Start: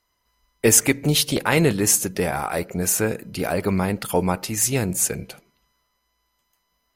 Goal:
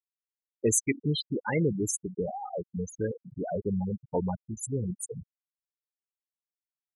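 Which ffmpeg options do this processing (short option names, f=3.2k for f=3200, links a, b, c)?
-af "aeval=exprs='val(0)+0.5*0.0422*sgn(val(0))':c=same,afftfilt=real='re*gte(hypot(re,im),0.355)':imag='im*gte(hypot(re,im),0.355)':win_size=1024:overlap=0.75,volume=-8.5dB"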